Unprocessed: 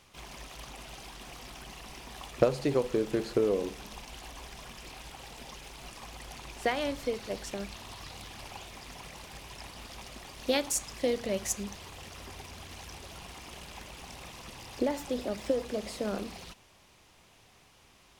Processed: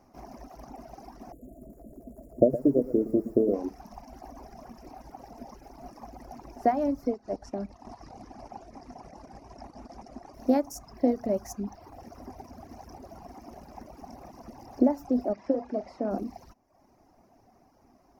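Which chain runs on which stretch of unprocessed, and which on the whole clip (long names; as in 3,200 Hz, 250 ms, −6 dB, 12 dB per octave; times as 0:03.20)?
0:01.32–0:03.54: linear-phase brick-wall band-stop 690–6,700 Hz + feedback echo at a low word length 115 ms, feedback 35%, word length 8 bits, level −7 dB
0:07.11–0:10.34: delay that plays each chunk backwards 129 ms, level −12 dB + low-pass filter 9,600 Hz 24 dB per octave + transient designer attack −2 dB, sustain −8 dB
0:15.33–0:16.11: low-pass filter 3,300 Hz + spectral tilt +2 dB per octave + double-tracking delay 44 ms −8 dB
whole clip: drawn EQ curve 170 Hz 0 dB, 250 Hz +12 dB, 490 Hz 0 dB, 700 Hz +10 dB, 1,000 Hz −1 dB, 2,100 Hz −11 dB, 3,400 Hz −27 dB, 5,500 Hz −5 dB, 8,100 Hz −20 dB, 14,000 Hz −4 dB; reverb reduction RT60 0.81 s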